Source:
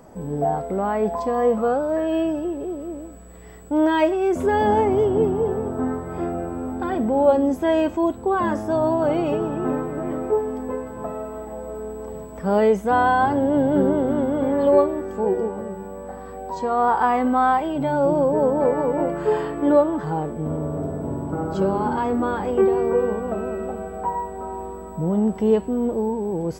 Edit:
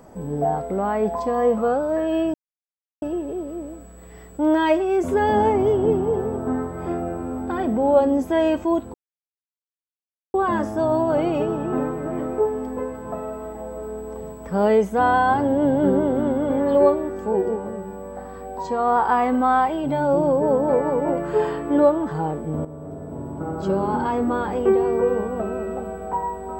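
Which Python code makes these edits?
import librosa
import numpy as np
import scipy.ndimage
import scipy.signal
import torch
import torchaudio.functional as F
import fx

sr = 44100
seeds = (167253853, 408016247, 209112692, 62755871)

y = fx.edit(x, sr, fx.insert_silence(at_s=2.34, length_s=0.68),
    fx.insert_silence(at_s=8.26, length_s=1.4),
    fx.fade_in_from(start_s=20.57, length_s=1.26, floor_db=-12.0), tone=tone)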